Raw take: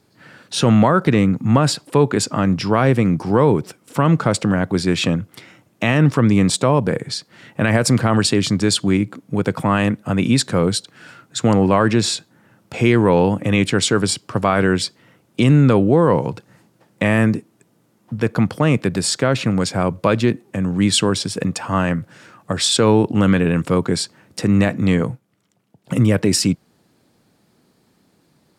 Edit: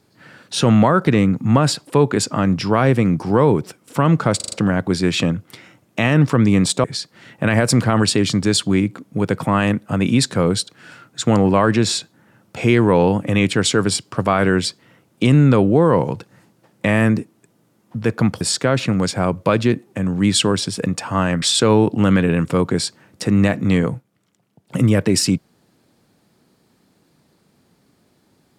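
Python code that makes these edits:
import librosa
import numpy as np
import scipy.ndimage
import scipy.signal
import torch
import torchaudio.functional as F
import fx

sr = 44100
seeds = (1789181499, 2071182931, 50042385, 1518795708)

y = fx.edit(x, sr, fx.stutter(start_s=4.36, slice_s=0.04, count=5),
    fx.cut(start_s=6.68, length_s=0.33),
    fx.cut(start_s=18.58, length_s=0.41),
    fx.cut(start_s=22.0, length_s=0.59), tone=tone)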